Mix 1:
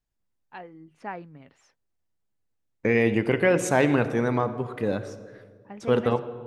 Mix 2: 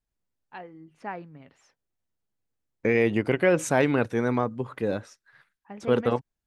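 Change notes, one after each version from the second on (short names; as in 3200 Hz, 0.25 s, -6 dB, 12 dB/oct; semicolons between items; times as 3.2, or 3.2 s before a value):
reverb: off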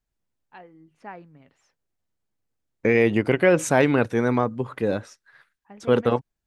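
first voice -4.0 dB; second voice +3.5 dB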